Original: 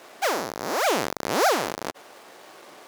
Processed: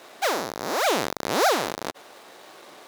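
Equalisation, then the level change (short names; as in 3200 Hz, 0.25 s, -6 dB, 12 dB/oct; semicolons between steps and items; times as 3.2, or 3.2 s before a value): bell 3800 Hz +4.5 dB 0.25 oct; 0.0 dB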